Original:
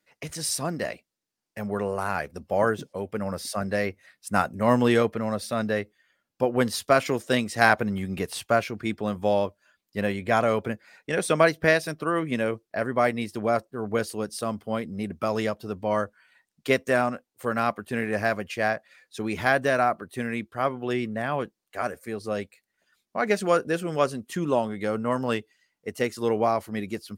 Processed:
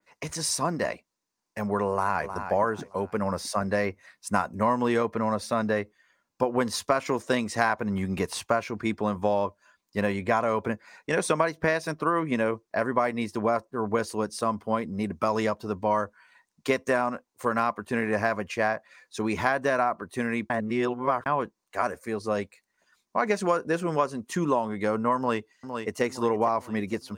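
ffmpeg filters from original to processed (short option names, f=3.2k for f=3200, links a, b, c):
-filter_complex "[0:a]asplit=2[a][b];[b]afade=t=in:st=1.89:d=0.01,afade=t=out:st=2.33:d=0.01,aecho=0:1:310|620|930|1240:0.251189|0.087916|0.0307706|0.0107697[c];[a][c]amix=inputs=2:normalize=0,asplit=2[d][e];[e]afade=t=in:st=25.17:d=0.01,afade=t=out:st=26.02:d=0.01,aecho=0:1:460|920|1380|1840|2300:0.316228|0.142302|0.0640361|0.0288163|0.0129673[f];[d][f]amix=inputs=2:normalize=0,asplit=3[g][h][i];[g]atrim=end=20.502[j];[h]atrim=start=20.498:end=21.262,asetpts=PTS-STARTPTS,areverse[k];[i]atrim=start=21.258[l];[j][k]acrossfade=d=0.004:c1=hsin:c2=hsin[m];[m][l]acrossfade=d=0.004:c1=hsin:c2=hsin,equalizer=f=125:t=o:w=0.33:g=-5,equalizer=f=1k:t=o:w=0.33:g=10,equalizer=f=3.15k:t=o:w=0.33:g=-4,equalizer=f=6.3k:t=o:w=0.33:g=4,equalizer=f=12.5k:t=o:w=0.33:g=-8,acompressor=threshold=-22dB:ratio=6,adynamicequalizer=threshold=0.00562:dfrequency=2900:dqfactor=0.7:tfrequency=2900:tqfactor=0.7:attack=5:release=100:ratio=0.375:range=2:mode=cutabove:tftype=highshelf,volume=2dB"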